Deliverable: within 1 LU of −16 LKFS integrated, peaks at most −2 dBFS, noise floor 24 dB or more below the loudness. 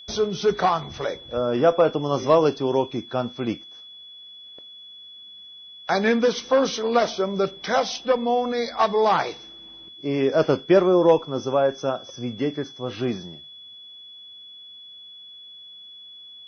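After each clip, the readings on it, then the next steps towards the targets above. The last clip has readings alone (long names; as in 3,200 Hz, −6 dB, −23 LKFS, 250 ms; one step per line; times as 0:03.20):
interfering tone 3,400 Hz; level of the tone −41 dBFS; integrated loudness −22.5 LKFS; sample peak −6.5 dBFS; target loudness −16.0 LKFS
→ notch filter 3,400 Hz, Q 30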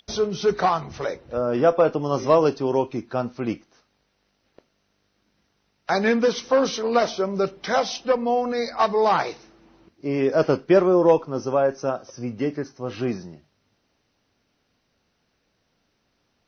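interfering tone none found; integrated loudness −22.5 LKFS; sample peak −6.5 dBFS; target loudness −16.0 LKFS
→ level +6.5 dB
brickwall limiter −2 dBFS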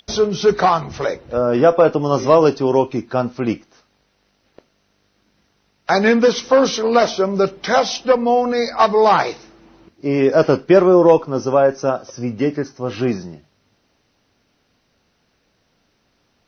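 integrated loudness −16.5 LKFS; sample peak −2.0 dBFS; background noise floor −65 dBFS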